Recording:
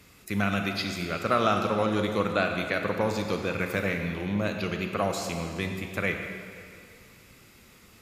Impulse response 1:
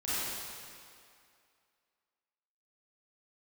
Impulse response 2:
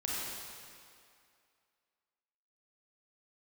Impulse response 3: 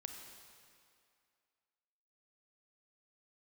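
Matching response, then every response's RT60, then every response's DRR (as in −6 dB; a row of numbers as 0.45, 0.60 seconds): 3; 2.4, 2.4, 2.3 seconds; −12.5, −6.0, 4.0 decibels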